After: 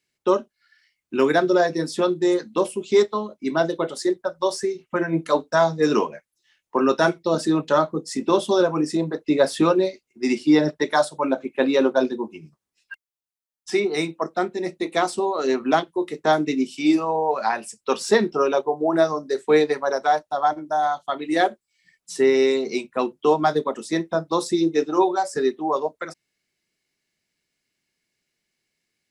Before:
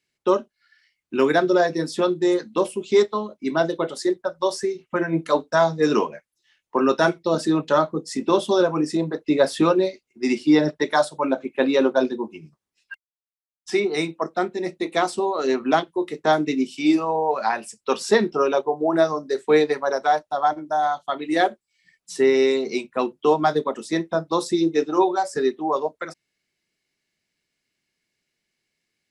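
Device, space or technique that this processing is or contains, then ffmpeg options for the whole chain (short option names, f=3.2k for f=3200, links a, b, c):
exciter from parts: -filter_complex "[0:a]asplit=2[a][b];[b]highpass=4.5k,asoftclip=type=tanh:threshold=-31dB,volume=-10dB[c];[a][c]amix=inputs=2:normalize=0"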